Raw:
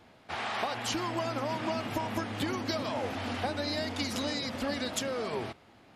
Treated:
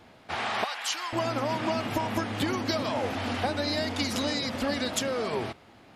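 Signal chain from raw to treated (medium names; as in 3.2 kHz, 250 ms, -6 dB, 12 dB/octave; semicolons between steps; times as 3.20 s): 0.64–1.13 s: high-pass 1.1 kHz 12 dB/octave; trim +4 dB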